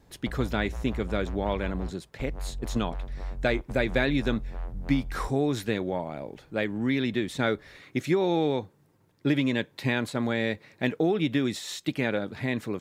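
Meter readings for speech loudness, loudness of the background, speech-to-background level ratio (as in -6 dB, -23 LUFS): -29.0 LUFS, -39.0 LUFS, 10.0 dB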